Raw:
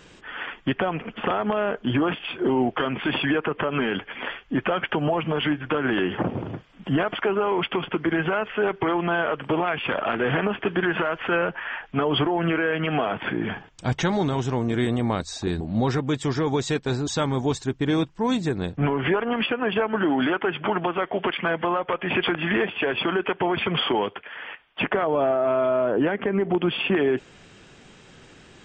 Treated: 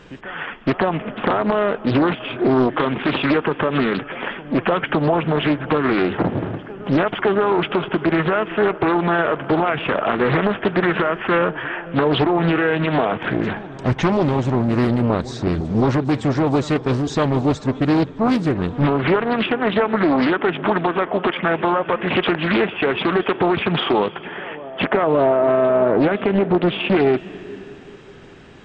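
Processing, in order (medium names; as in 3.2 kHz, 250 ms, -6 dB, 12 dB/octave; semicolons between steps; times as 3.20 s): low-pass 2.2 kHz 6 dB/octave; reverse echo 563 ms -18.5 dB; reverberation RT60 3.0 s, pre-delay 234 ms, DRR 17.5 dB; loudspeaker Doppler distortion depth 0.71 ms; trim +6 dB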